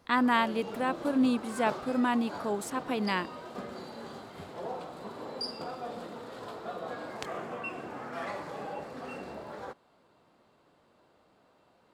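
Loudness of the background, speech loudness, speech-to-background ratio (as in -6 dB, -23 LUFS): -40.5 LUFS, -29.5 LUFS, 11.0 dB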